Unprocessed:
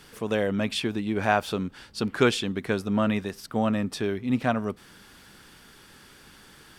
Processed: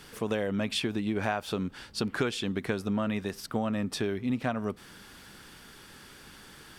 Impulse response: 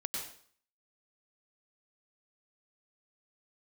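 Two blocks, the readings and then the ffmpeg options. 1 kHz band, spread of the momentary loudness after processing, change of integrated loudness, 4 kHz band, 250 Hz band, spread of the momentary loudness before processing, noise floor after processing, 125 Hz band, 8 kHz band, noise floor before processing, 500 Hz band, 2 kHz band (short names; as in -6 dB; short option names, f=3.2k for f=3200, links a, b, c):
-7.0 dB, 19 LU, -4.5 dB, -3.0 dB, -4.0 dB, 9 LU, -51 dBFS, -3.5 dB, -2.0 dB, -52 dBFS, -5.0 dB, -5.0 dB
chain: -af "acompressor=threshold=-27dB:ratio=6,volume=1dB"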